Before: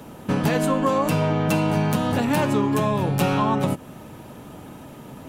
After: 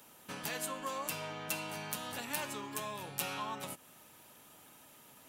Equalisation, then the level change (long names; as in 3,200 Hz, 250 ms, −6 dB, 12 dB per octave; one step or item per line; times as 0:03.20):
first-order pre-emphasis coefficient 0.97
high-shelf EQ 3,900 Hz −7.5 dB
+1.0 dB